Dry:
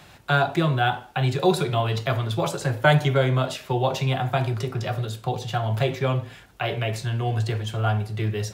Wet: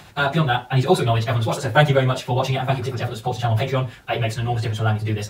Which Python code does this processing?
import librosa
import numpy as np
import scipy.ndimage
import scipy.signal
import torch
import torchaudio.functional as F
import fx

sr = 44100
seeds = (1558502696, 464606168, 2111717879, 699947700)

y = fx.stretch_vocoder_free(x, sr, factor=0.62)
y = F.gain(torch.from_numpy(y), 6.5).numpy()